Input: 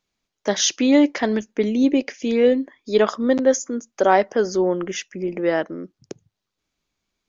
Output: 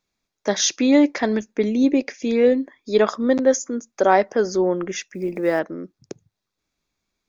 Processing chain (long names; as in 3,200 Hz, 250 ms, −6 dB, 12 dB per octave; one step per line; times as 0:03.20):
0:05.08–0:05.61: one scale factor per block 7 bits
notch filter 3,000 Hz, Q 7.7